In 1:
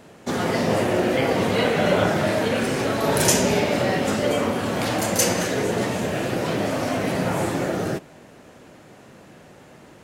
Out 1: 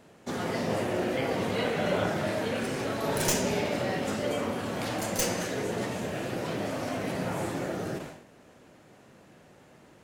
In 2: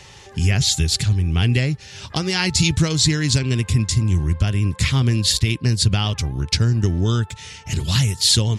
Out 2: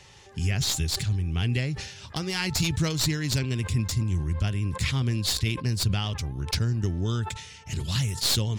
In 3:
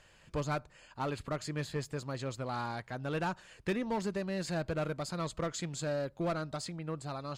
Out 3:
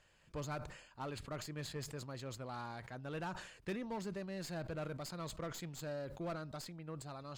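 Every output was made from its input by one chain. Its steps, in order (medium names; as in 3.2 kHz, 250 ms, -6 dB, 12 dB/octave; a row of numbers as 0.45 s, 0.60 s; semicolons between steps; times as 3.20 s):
tracing distortion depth 0.034 ms; decay stretcher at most 73 dB/s; trim -8.5 dB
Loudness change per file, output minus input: -8.5 LU, -8.0 LU, -7.5 LU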